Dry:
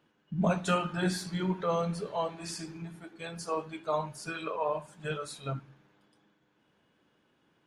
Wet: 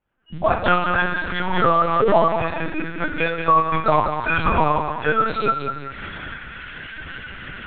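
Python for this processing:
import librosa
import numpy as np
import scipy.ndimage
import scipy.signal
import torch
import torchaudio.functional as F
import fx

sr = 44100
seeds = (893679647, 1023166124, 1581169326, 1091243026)

y = fx.spec_quant(x, sr, step_db=15)
y = fx.recorder_agc(y, sr, target_db=-21.0, rise_db_per_s=51.0, max_gain_db=30)
y = scipy.signal.sosfilt(scipy.signal.butter(2, 2800.0, 'lowpass', fs=sr, output='sos'), y)
y = fx.noise_reduce_blind(y, sr, reduce_db=20)
y = fx.highpass(y, sr, hz=190.0, slope=6)
y = fx.peak_eq(y, sr, hz=1200.0, db=6.5, octaves=1.5)
y = fx.mod_noise(y, sr, seeds[0], snr_db=17)
y = fx.echo_feedback(y, sr, ms=192, feedback_pct=39, wet_db=-7.5)
y = fx.room_shoebox(y, sr, seeds[1], volume_m3=3700.0, walls='furnished', distance_m=1.6)
y = fx.lpc_vocoder(y, sr, seeds[2], excitation='pitch_kept', order=10)
y = fx.pre_swell(y, sr, db_per_s=39.0, at=(0.65, 2.65), fade=0.02)
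y = y * 10.0 ** (8.5 / 20.0)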